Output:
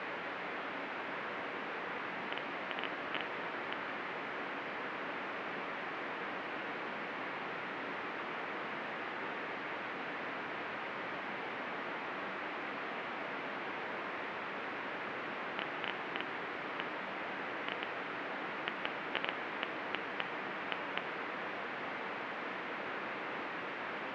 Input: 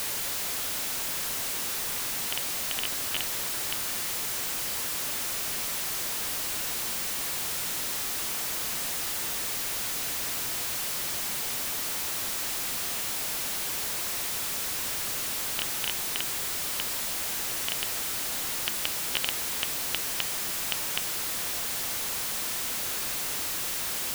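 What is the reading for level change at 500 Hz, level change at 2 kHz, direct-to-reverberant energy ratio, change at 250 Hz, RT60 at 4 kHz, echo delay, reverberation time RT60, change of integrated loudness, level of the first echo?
+1.0 dB, -2.0 dB, 10.0 dB, +0.5 dB, 1.8 s, no echo, 3.0 s, -11.5 dB, no echo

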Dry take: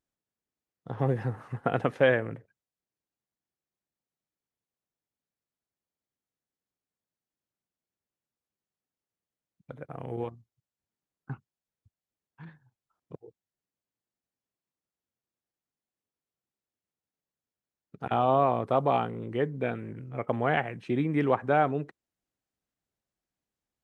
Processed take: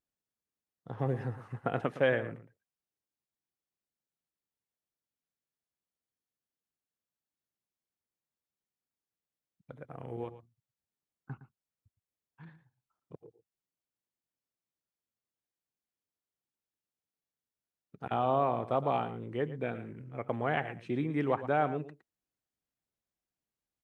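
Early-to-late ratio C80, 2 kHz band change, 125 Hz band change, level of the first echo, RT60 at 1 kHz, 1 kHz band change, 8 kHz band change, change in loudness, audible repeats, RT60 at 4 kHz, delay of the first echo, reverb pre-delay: no reverb, -5.0 dB, -5.0 dB, -13.5 dB, no reverb, -5.0 dB, no reading, -5.0 dB, 1, no reverb, 113 ms, no reverb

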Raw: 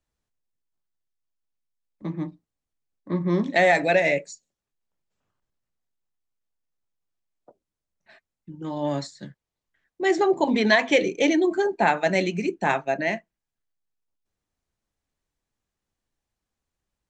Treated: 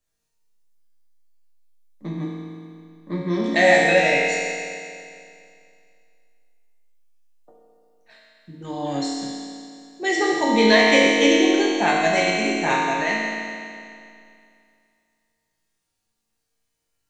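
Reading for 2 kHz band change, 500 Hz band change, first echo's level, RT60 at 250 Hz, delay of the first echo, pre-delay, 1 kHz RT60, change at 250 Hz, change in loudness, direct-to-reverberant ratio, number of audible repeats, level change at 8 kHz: +5.5 dB, +3.0 dB, no echo, 2.4 s, no echo, 4 ms, 2.4 s, +4.0 dB, +3.5 dB, -6.5 dB, no echo, +9.5 dB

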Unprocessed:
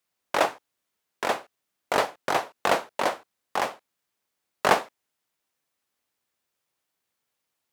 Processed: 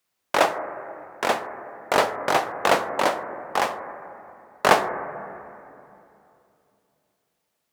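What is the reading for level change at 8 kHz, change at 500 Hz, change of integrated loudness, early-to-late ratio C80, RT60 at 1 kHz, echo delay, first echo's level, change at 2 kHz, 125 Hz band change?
+3.5 dB, +4.5 dB, +3.5 dB, 11.0 dB, 2.7 s, no echo, no echo, +4.0 dB, +4.5 dB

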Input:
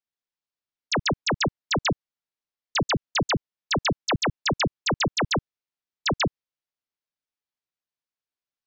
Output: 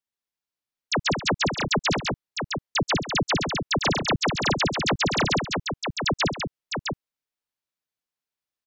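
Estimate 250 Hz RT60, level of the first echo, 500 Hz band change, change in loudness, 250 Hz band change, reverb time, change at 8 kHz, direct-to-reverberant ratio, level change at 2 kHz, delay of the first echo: no reverb, -15.5 dB, +2.0 dB, +1.0 dB, +2.0 dB, no reverb, +2.0 dB, no reverb, +2.0 dB, 129 ms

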